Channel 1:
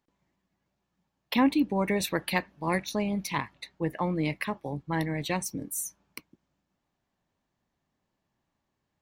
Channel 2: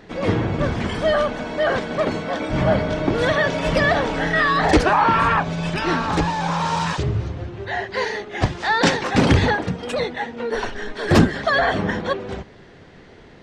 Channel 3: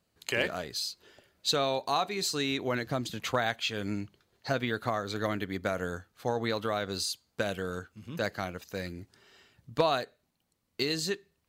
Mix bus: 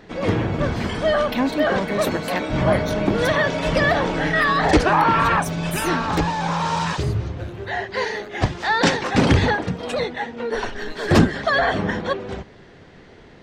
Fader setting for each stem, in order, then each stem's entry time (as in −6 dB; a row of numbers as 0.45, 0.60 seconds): +0.5, −0.5, −12.0 decibels; 0.00, 0.00, 0.00 seconds